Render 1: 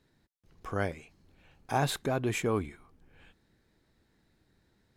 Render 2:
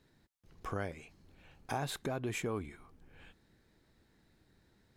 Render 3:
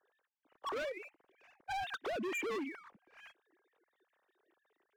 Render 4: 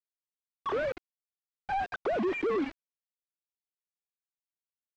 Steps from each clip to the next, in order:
compression 3:1, threshold -37 dBFS, peak gain reduction 10.5 dB; trim +1 dB
formants replaced by sine waves; waveshaping leveller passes 1; hard clipper -37.5 dBFS, distortion -8 dB; trim +1.5 dB
companded quantiser 2-bit; tape spacing loss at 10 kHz 38 dB

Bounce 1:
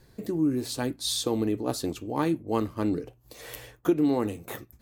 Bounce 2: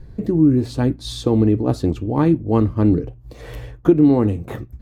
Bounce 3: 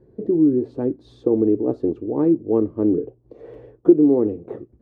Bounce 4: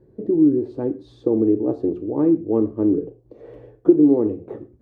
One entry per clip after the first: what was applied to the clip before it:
RIAA curve playback; trim +5 dB
band-pass filter 400 Hz, Q 2.6; trim +3.5 dB
gated-style reverb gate 150 ms falling, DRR 9.5 dB; trim -1 dB

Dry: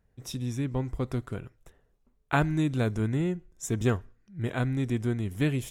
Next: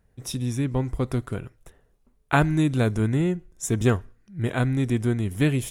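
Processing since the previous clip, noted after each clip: peaking EQ 9.8 kHz +7.5 dB 0.2 oct; trim +5 dB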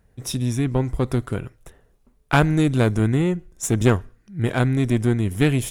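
single-diode clipper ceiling -21.5 dBFS; trim +5 dB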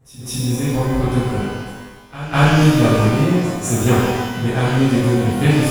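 reverse echo 203 ms -16 dB; pitch-shifted reverb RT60 1.2 s, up +12 st, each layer -8 dB, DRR -11 dB; trim -7 dB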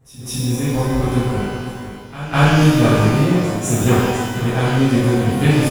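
delay 499 ms -12 dB

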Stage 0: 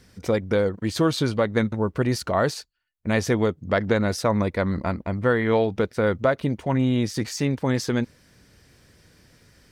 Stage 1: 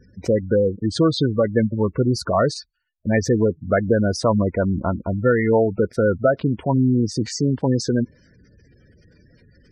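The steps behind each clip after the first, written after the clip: spectral gate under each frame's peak -15 dB strong; trim +4 dB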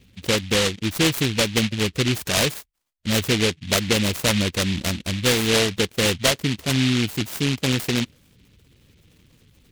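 delay time shaken by noise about 2.8 kHz, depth 0.3 ms; trim -2.5 dB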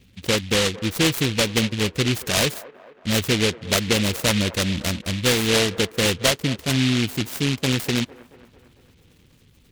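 feedback echo behind a band-pass 225 ms, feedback 57%, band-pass 750 Hz, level -16 dB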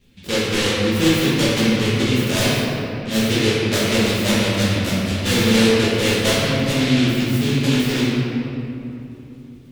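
simulated room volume 120 m³, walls hard, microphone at 1.3 m; trim -7.5 dB

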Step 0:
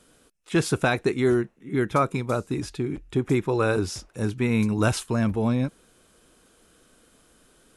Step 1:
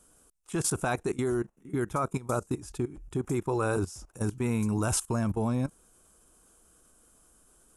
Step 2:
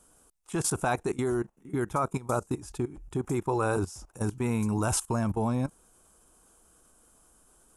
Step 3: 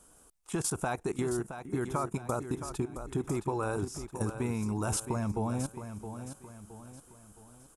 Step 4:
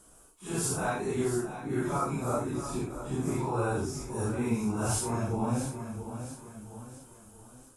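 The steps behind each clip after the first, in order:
graphic EQ 125/250/500/2000/4000/8000 Hz -6/-6/-7/-11/-12/+4 dB; level held to a coarse grid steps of 17 dB; trim +6.5 dB
peaking EQ 860 Hz +4.5 dB 0.68 oct
compression, threshold -30 dBFS, peak gain reduction 7.5 dB; feedback delay 668 ms, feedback 42%, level -10 dB; trim +1.5 dB
phase randomisation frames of 200 ms; trim +2.5 dB

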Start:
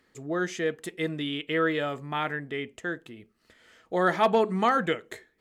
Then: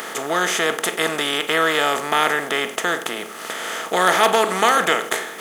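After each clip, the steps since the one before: spectral levelling over time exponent 0.4; RIAA curve recording; trim +3.5 dB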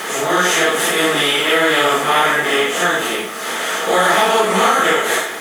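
phase randomisation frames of 200 ms; compression, threshold -17 dBFS, peak gain reduction 6 dB; trim +7 dB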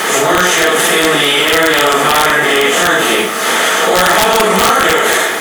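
integer overflow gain 5 dB; loudness maximiser +11 dB; trim -1 dB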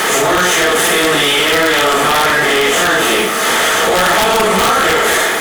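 waveshaping leveller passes 2; trim -5 dB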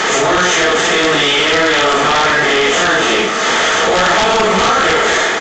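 resampled via 16 kHz

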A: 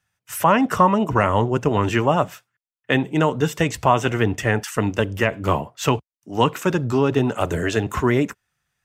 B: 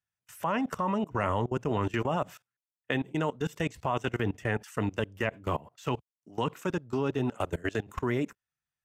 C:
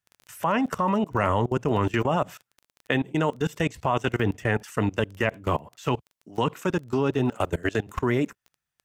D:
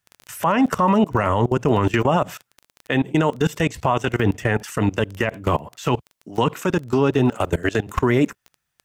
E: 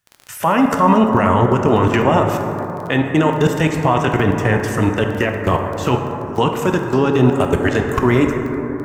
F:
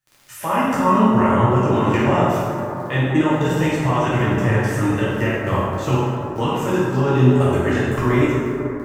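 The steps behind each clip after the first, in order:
level held to a coarse grid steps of 22 dB; trim -6 dB
crackle 15 per s -42 dBFS; trim +5.5 dB
peak limiter -17 dBFS, peak gain reduction 8.5 dB; trim +8.5 dB
plate-style reverb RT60 3.8 s, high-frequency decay 0.25×, DRR 2.5 dB; trim +2.5 dB
plate-style reverb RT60 1 s, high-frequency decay 0.9×, DRR -7 dB; trim -10.5 dB

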